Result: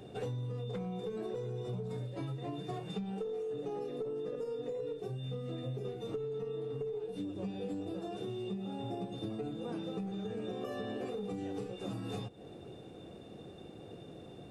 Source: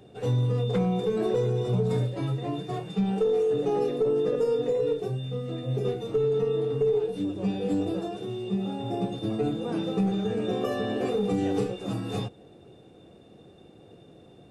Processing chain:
downward compressor 12 to 1, threshold −38 dBFS, peak gain reduction 17.5 dB
level +2 dB

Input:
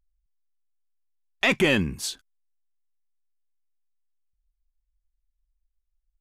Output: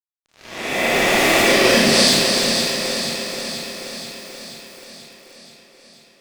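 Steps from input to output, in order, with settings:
peak hold with a rise ahead of every peak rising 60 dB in 1.63 s
parametric band 780 Hz +5.5 dB 2.1 octaves
fuzz pedal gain 39 dB, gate −45 dBFS
0:01.44–0:02.08: loudspeaker in its box 190–9,500 Hz, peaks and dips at 230 Hz +4 dB, 500 Hz +6 dB, 760 Hz −7 dB, 1,300 Hz −4 dB, 4,800 Hz +9 dB, 7,000 Hz −5 dB
on a send: delay that swaps between a low-pass and a high-pass 241 ms, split 2,000 Hz, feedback 80%, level −5 dB
on the sum: four-comb reverb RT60 0.74 s, combs from 27 ms, DRR −4 dB
feedback echo at a low word length 296 ms, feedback 55%, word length 5 bits, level −6 dB
level −8 dB

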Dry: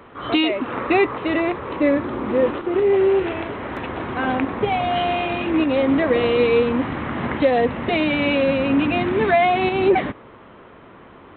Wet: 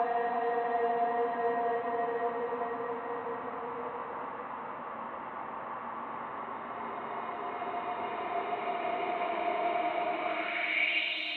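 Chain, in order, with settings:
extreme stretch with random phases 29×, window 0.25 s, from 0:07.59
log-companded quantiser 8 bits
band-pass filter sweep 1,000 Hz → 3,800 Hz, 0:10.19–0:11.24
level −3 dB

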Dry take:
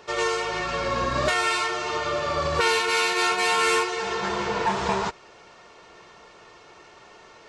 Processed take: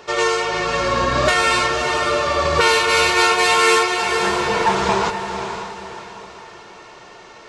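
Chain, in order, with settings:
mains-hum notches 50/100/150/200 Hz
on a send: feedback delay with all-pass diffusion 533 ms, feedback 40%, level −8 dB
on the sum: level +6.5 dB

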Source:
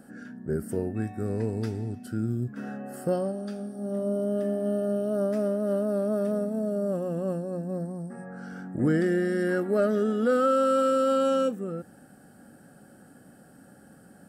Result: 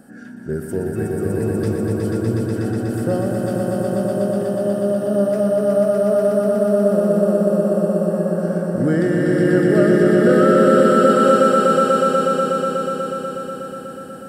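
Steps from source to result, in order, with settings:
echo that builds up and dies away 122 ms, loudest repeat 5, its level −3.5 dB
level +4.5 dB

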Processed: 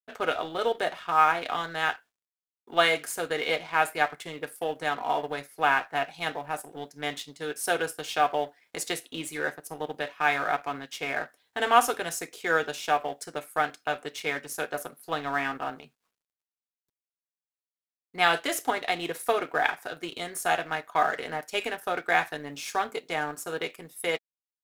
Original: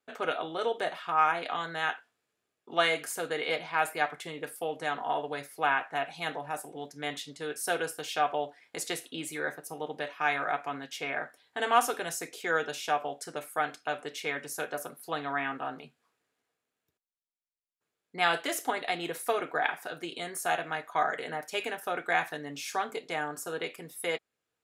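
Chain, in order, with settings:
mu-law and A-law mismatch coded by A
level +4.5 dB

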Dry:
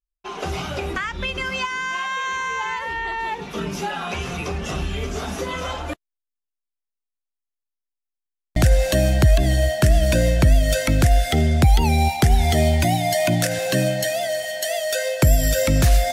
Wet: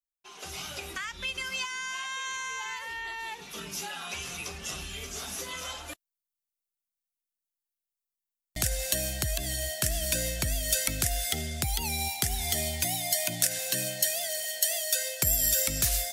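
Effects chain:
first-order pre-emphasis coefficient 0.9
automatic gain control gain up to 6 dB
level −3.5 dB

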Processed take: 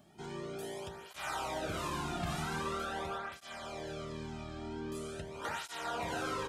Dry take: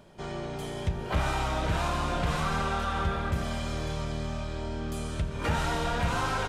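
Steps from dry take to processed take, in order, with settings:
high-shelf EQ 7,500 Hz +10 dB, from 0:03.18 −2 dB, from 0:04.95 +4.5 dB
feedback echo with a low-pass in the loop 74 ms, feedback 83%, low-pass 2,000 Hz, level −13.5 dB
through-zero flanger with one copy inverted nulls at 0.44 Hz, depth 2.1 ms
level −5 dB

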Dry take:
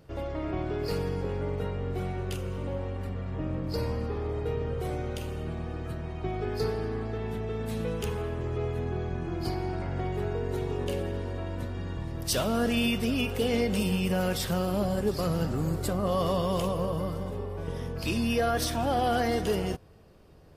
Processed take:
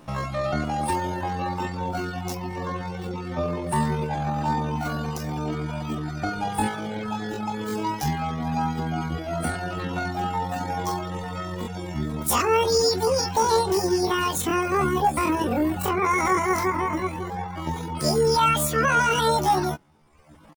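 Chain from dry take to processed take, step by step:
double-tracking delay 26 ms −7 dB
pitch shifter +11.5 semitones
reverb reduction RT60 1 s
level +6.5 dB

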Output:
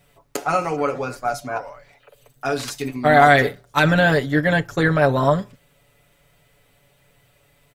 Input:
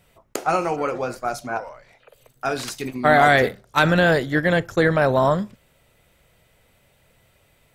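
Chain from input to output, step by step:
comb filter 7 ms, depth 71%
bit-depth reduction 12 bits, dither none
level −1 dB

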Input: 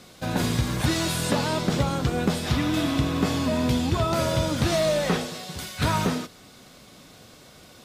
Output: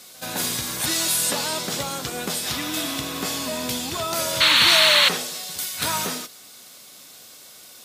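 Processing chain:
sound drawn into the spectrogram noise, 0:04.40–0:05.09, 850–4,500 Hz −19 dBFS
RIAA equalisation recording
echo ahead of the sound 77 ms −21 dB
level −1.5 dB

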